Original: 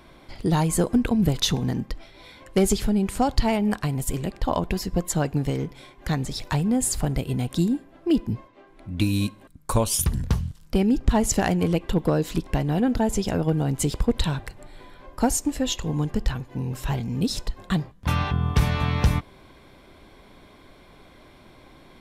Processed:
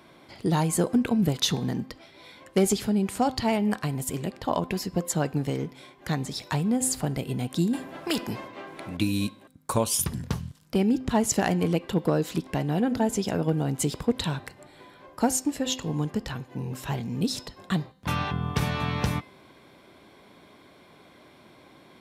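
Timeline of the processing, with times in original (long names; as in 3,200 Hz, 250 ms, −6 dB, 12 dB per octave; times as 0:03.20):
0:07.73–0:08.97: every bin compressed towards the loudest bin 2 to 1
whole clip: high-pass filter 130 Hz 12 dB per octave; hum removal 258.6 Hz, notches 21; level −1.5 dB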